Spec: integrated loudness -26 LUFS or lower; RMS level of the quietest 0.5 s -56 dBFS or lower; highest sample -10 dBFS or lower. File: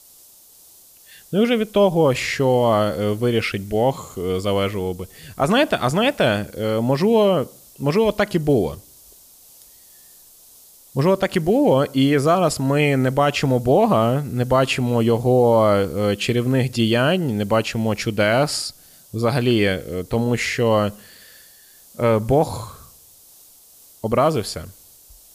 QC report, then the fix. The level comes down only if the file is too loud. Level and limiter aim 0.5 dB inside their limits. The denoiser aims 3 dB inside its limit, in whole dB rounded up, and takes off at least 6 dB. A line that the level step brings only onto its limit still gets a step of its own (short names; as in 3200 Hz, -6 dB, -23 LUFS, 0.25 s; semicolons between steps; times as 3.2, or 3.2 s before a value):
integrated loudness -19.5 LUFS: fail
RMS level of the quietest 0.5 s -49 dBFS: fail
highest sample -6.5 dBFS: fail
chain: denoiser 6 dB, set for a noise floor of -49 dBFS; gain -7 dB